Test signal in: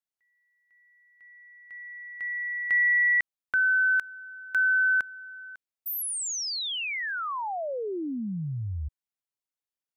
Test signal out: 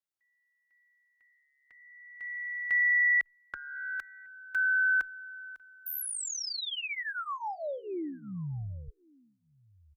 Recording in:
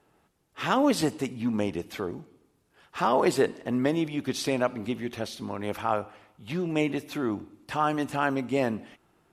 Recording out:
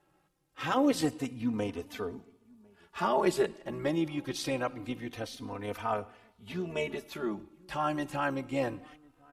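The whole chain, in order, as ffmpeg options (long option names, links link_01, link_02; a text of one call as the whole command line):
ffmpeg -i in.wav -filter_complex "[0:a]asubboost=boost=3:cutoff=58,asplit=2[link_01][link_02];[link_02]adelay=1050,volume=-27dB,highshelf=frequency=4000:gain=-23.6[link_03];[link_01][link_03]amix=inputs=2:normalize=0,tremolo=f=71:d=0.333,asplit=2[link_04][link_05];[link_05]adelay=3.2,afreqshift=-0.25[link_06];[link_04][link_06]amix=inputs=2:normalize=1" out.wav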